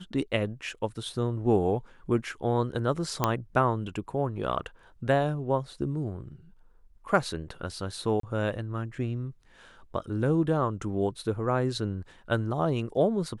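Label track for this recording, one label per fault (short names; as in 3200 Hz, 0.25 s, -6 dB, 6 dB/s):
3.240000	3.240000	pop -9 dBFS
8.200000	8.230000	gap 33 ms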